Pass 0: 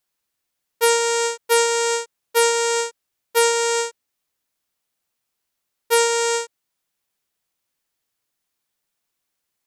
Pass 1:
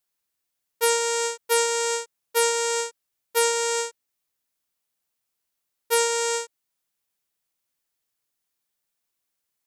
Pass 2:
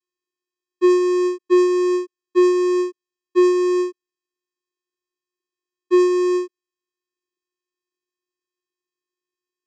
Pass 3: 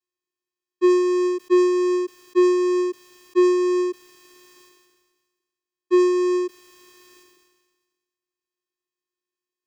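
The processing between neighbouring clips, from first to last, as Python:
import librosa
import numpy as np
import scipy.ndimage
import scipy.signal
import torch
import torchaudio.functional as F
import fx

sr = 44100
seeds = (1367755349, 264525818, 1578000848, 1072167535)

y1 = fx.high_shelf(x, sr, hz=6700.0, db=4.5)
y1 = y1 * 10.0 ** (-5.0 / 20.0)
y2 = fx.vocoder(y1, sr, bands=8, carrier='square', carrier_hz=360.0)
y2 = y2 * 10.0 ** (8.0 / 20.0)
y3 = fx.sustainer(y2, sr, db_per_s=39.0)
y3 = y3 * 10.0 ** (-2.0 / 20.0)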